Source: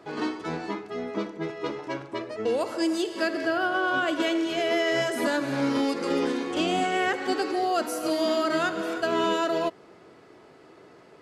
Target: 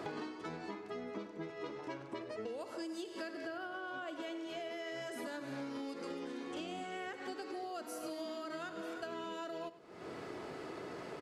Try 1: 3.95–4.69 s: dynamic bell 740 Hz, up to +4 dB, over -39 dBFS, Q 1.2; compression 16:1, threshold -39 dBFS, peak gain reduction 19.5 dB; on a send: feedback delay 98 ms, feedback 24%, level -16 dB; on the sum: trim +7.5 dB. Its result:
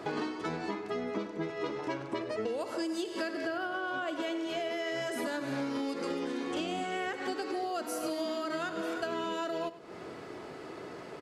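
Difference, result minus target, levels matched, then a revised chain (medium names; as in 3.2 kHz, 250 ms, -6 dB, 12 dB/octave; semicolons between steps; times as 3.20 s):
compression: peak gain reduction -8.5 dB
3.95–4.69 s: dynamic bell 740 Hz, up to +4 dB, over -39 dBFS, Q 1.2; compression 16:1, threshold -48 dBFS, peak gain reduction 28 dB; on a send: feedback delay 98 ms, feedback 24%, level -16 dB; on the sum: trim +7.5 dB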